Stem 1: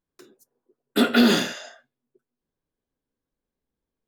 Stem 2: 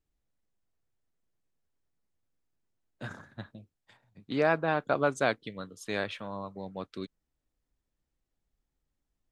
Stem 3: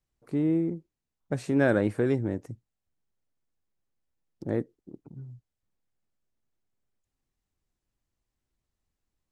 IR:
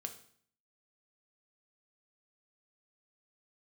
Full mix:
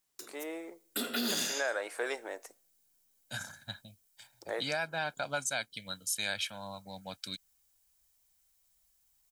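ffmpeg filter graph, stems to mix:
-filter_complex "[0:a]bass=frequency=250:gain=-3,treble=frequency=4000:gain=8,acompressor=threshold=-20dB:ratio=6,volume=-7dB,asplit=2[link_01][link_02];[link_02]volume=-8dB[link_03];[1:a]aecho=1:1:1.3:0.77,crystalizer=i=7:c=0,adelay=300,volume=-8.5dB[link_04];[2:a]highpass=frequency=600:width=0.5412,highpass=frequency=600:width=1.3066,volume=1dB,asplit=2[link_05][link_06];[link_06]volume=-10dB[link_07];[3:a]atrim=start_sample=2205[link_08];[link_03][link_07]amix=inputs=2:normalize=0[link_09];[link_09][link_08]afir=irnorm=-1:irlink=0[link_10];[link_01][link_04][link_05][link_10]amix=inputs=4:normalize=0,highshelf=frequency=3800:gain=9.5,alimiter=limit=-22dB:level=0:latency=1:release=298"

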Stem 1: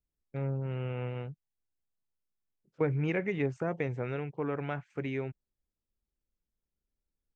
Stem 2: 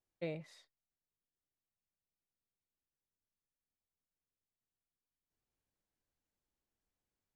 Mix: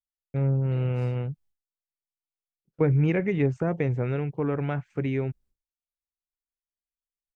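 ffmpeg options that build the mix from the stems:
ffmpeg -i stem1.wav -i stem2.wav -filter_complex "[0:a]lowshelf=frequency=420:gain=7,volume=2dB[link_01];[1:a]alimiter=level_in=15dB:limit=-24dB:level=0:latency=1,volume=-15dB,adelay=500,volume=-0.5dB[link_02];[link_01][link_02]amix=inputs=2:normalize=0,agate=range=-33dB:threshold=-54dB:ratio=3:detection=peak,lowshelf=frequency=75:gain=6.5" out.wav

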